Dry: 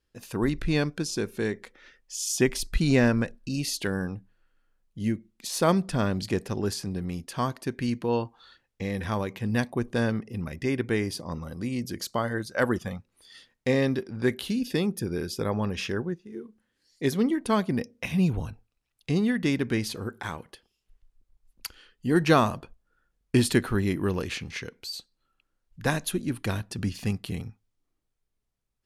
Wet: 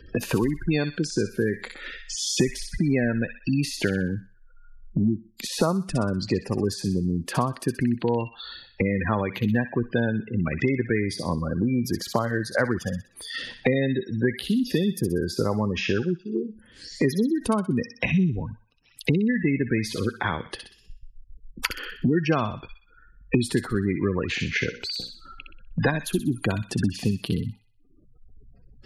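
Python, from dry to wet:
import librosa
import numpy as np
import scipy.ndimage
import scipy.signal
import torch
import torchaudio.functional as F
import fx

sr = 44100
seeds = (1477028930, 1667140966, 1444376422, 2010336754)

y = fx.hum_notches(x, sr, base_hz=60, count=9, at=(24.68, 25.88))
y = fx.spec_gate(y, sr, threshold_db=-20, keep='strong')
y = fx.echo_wet_highpass(y, sr, ms=62, feedback_pct=34, hz=2300.0, wet_db=-3.5)
y = fx.band_squash(y, sr, depth_pct=100)
y = y * librosa.db_to_amplitude(2.5)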